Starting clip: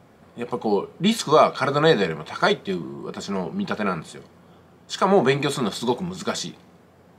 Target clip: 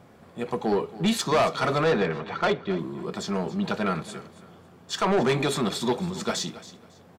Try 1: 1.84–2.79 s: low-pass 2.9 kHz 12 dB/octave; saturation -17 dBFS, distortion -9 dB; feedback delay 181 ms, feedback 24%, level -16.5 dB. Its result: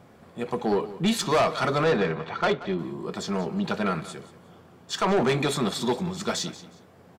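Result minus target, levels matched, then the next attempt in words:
echo 95 ms early
1.84–2.79 s: low-pass 2.9 kHz 12 dB/octave; saturation -17 dBFS, distortion -9 dB; feedback delay 276 ms, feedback 24%, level -16.5 dB

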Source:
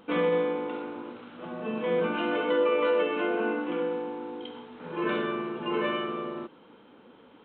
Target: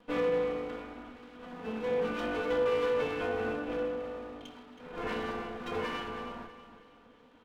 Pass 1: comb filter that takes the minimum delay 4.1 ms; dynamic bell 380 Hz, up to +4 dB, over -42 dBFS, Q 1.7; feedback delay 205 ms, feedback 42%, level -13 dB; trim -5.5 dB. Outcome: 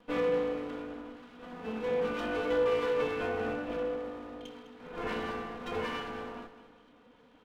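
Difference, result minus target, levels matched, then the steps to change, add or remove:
echo 117 ms early
change: feedback delay 322 ms, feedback 42%, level -13 dB

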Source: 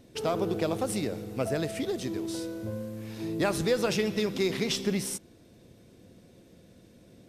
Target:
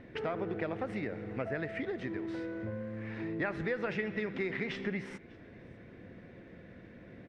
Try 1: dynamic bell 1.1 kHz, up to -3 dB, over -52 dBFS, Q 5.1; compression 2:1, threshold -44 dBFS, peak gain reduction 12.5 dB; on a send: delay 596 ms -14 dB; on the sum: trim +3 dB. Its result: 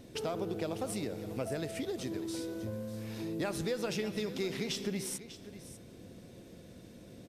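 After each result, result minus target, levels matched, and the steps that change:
echo-to-direct +11.5 dB; 2 kHz band -7.0 dB
change: delay 596 ms -25.5 dB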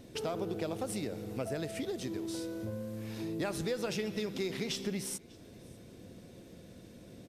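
2 kHz band -7.0 dB
add after dynamic bell: resonant low-pass 1.9 kHz, resonance Q 3.6

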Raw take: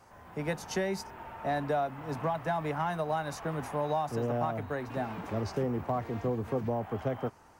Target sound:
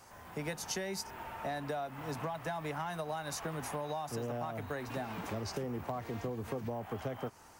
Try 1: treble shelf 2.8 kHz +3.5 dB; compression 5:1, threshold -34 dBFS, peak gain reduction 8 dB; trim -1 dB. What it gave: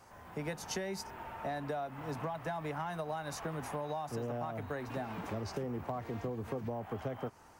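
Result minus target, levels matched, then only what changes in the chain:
4 kHz band -3.0 dB
change: treble shelf 2.8 kHz +10.5 dB

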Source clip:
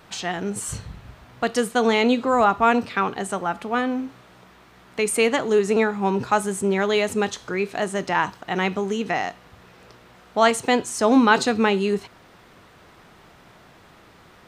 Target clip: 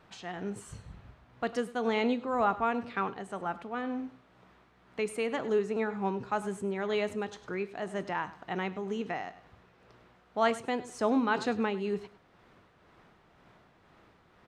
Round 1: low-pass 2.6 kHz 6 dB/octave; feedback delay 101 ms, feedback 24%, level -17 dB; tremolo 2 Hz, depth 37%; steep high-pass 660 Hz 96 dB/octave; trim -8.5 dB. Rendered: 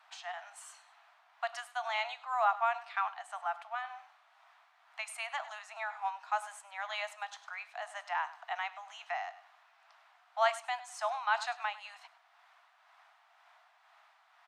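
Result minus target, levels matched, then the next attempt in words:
500 Hz band -6.0 dB
low-pass 2.6 kHz 6 dB/octave; feedback delay 101 ms, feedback 24%, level -17 dB; tremolo 2 Hz, depth 37%; trim -8.5 dB

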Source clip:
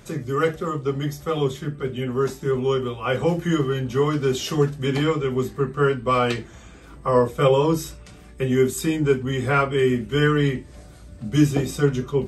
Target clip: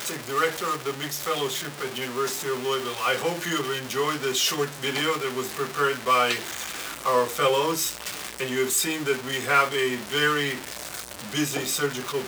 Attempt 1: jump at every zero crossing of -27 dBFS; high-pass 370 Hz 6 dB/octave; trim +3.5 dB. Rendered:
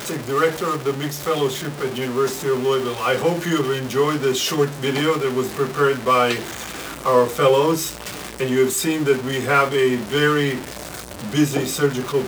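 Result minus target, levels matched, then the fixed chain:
500 Hz band +3.0 dB
jump at every zero crossing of -27 dBFS; high-pass 1.4 kHz 6 dB/octave; trim +3.5 dB

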